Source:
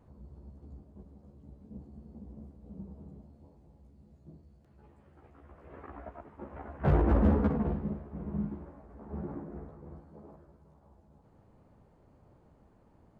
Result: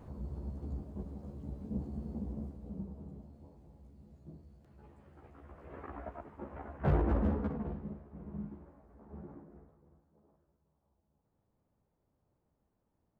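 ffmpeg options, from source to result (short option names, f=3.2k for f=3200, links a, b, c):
-af "volume=9dB,afade=t=out:st=2.1:d=0.81:silence=0.398107,afade=t=out:st=6.15:d=1.22:silence=0.354813,afade=t=out:st=8.98:d=0.92:silence=0.334965"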